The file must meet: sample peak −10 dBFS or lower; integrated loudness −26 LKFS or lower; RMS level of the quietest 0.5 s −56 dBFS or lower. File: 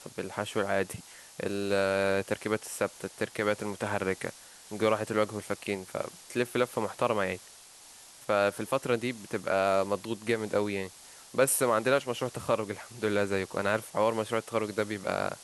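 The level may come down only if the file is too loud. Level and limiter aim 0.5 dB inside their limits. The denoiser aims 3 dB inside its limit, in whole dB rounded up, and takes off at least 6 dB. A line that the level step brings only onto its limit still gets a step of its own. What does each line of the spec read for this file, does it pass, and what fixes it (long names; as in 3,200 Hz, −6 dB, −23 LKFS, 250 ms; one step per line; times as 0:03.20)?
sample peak −11.0 dBFS: in spec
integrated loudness −30.5 LKFS: in spec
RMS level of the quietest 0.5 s −52 dBFS: out of spec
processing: broadband denoise 7 dB, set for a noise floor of −52 dBFS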